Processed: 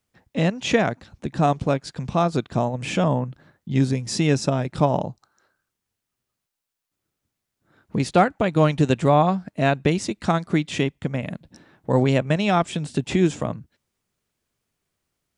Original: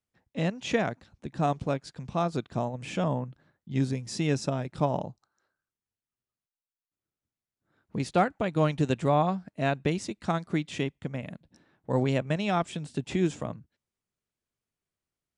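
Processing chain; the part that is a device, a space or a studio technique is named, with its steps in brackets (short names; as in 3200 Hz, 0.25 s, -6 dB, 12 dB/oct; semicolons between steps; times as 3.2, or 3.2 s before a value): parallel compression (in parallel at -1 dB: compressor, threshold -39 dBFS, peak gain reduction 19.5 dB); on the sum: gain +6 dB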